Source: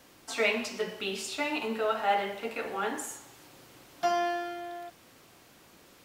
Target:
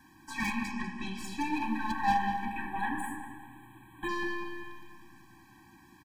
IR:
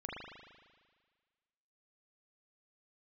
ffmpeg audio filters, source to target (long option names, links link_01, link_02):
-filter_complex "[0:a]aeval=exprs='0.224*(cos(1*acos(clip(val(0)/0.224,-1,1)))-cos(1*PI/2))+0.0126*(cos(5*acos(clip(val(0)/0.224,-1,1)))-cos(5*PI/2))+0.112*(cos(6*acos(clip(val(0)/0.224,-1,1)))-cos(6*PI/2))+0.0891*(cos(8*acos(clip(val(0)/0.224,-1,1)))-cos(8*PI/2))':channel_layout=same,asplit=3[link_01][link_02][link_03];[link_01]afade=type=out:start_time=0.71:duration=0.02[link_04];[link_02]lowpass=frequency=8800:width=0.5412,lowpass=frequency=8800:width=1.3066,afade=type=in:start_time=0.71:duration=0.02,afade=type=out:start_time=1.16:duration=0.02[link_05];[link_03]afade=type=in:start_time=1.16:duration=0.02[link_06];[link_04][link_05][link_06]amix=inputs=3:normalize=0,highshelf=frequency=2400:width_type=q:width=1.5:gain=-6.5,acrossover=split=760[link_07][link_08];[link_08]asoftclip=type=hard:threshold=-26.5dB[link_09];[link_07][link_09]amix=inputs=2:normalize=0,asettb=1/sr,asplit=3[link_10][link_11][link_12];[link_10]atrim=end=2.454[link_13];[link_11]atrim=start=2.45:end=4.09,asetpts=PTS-STARTPTS,afade=type=in:duration=0.004:curve=qsin,afade=type=out:start_time=1.636:duration=0.004:curve=qsin,asuperstop=centerf=5400:order=8:qfactor=1.4[link_14];[link_12]atrim=start=4.086[link_15];[link_13][link_14]acrossfade=duration=0.004:curve1=hsin:curve2=qsin[link_16];[link_16][link_15]acrossfade=duration=0.004:curve1=qsin:curve2=hsin,asplit=2[link_17][link_18];[link_18]adelay=195,lowpass=frequency=2500:poles=1,volume=-5dB,asplit=2[link_19][link_20];[link_20]adelay=195,lowpass=frequency=2500:poles=1,volume=0.47,asplit=2[link_21][link_22];[link_22]adelay=195,lowpass=frequency=2500:poles=1,volume=0.47,asplit=2[link_23][link_24];[link_24]adelay=195,lowpass=frequency=2500:poles=1,volume=0.47,asplit=2[link_25][link_26];[link_26]adelay=195,lowpass=frequency=2500:poles=1,volume=0.47,asplit=2[link_27][link_28];[link_28]adelay=195,lowpass=frequency=2500:poles=1,volume=0.47[link_29];[link_19][link_21][link_23][link_25][link_27][link_29]amix=inputs=6:normalize=0[link_30];[link_17][link_30]amix=inputs=2:normalize=0,afftfilt=real='re*eq(mod(floor(b*sr/1024/380),2),0)':imag='im*eq(mod(floor(b*sr/1024/380),2),0)':win_size=1024:overlap=0.75"